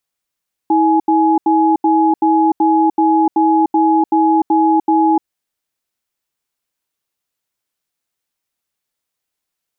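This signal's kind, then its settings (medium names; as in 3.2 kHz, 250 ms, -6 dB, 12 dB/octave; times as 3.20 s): cadence 322 Hz, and 840 Hz, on 0.30 s, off 0.08 s, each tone -12 dBFS 4.55 s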